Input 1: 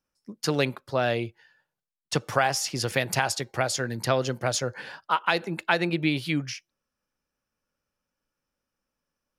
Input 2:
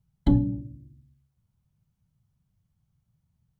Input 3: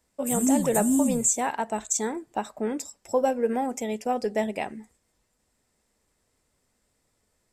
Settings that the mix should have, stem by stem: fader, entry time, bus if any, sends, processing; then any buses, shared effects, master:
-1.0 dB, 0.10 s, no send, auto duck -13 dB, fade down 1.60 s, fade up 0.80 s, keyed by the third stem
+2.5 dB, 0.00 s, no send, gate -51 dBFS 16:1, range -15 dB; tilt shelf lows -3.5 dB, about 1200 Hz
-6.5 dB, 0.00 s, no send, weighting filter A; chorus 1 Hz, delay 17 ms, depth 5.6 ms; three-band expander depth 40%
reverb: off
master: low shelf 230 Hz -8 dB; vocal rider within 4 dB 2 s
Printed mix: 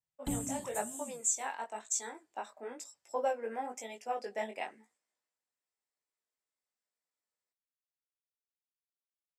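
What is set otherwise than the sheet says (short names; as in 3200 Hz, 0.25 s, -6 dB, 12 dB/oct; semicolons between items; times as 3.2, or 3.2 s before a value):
stem 1: muted; stem 2 +2.5 dB -> -8.0 dB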